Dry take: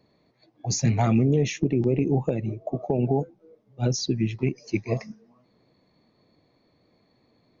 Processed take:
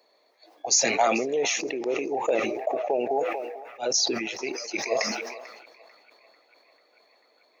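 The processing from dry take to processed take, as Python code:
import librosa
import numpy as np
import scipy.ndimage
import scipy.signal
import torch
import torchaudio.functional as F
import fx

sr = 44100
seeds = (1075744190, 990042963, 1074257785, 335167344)

p1 = fx.ladder_highpass(x, sr, hz=440.0, resonance_pct=30)
p2 = fx.high_shelf(p1, sr, hz=4100.0, db=8.5)
p3 = p2 + fx.echo_banded(p2, sr, ms=443, feedback_pct=82, hz=1500.0, wet_db=-18.0, dry=0)
p4 = fx.sustainer(p3, sr, db_per_s=39.0)
y = F.gain(torch.from_numpy(p4), 8.0).numpy()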